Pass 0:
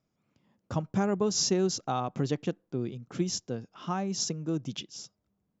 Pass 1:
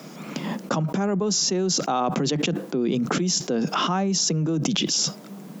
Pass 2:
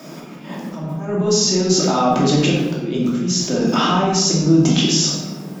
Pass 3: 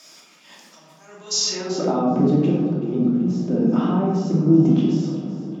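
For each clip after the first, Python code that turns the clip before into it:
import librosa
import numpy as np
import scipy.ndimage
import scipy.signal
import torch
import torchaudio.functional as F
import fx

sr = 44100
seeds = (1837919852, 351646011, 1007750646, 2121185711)

y1 = scipy.signal.sosfilt(scipy.signal.butter(12, 150.0, 'highpass', fs=sr, output='sos'), x)
y1 = fx.env_flatten(y1, sr, amount_pct=100)
y2 = fx.auto_swell(y1, sr, attack_ms=284.0)
y2 = fx.room_shoebox(y2, sr, seeds[0], volume_m3=590.0, walls='mixed', distance_m=2.7)
y3 = fx.echo_alternate(y2, sr, ms=190, hz=1500.0, feedback_pct=75, wet_db=-12.0)
y3 = fx.filter_sweep_bandpass(y3, sr, from_hz=6000.0, to_hz=240.0, start_s=1.29, end_s=2.05, q=0.86)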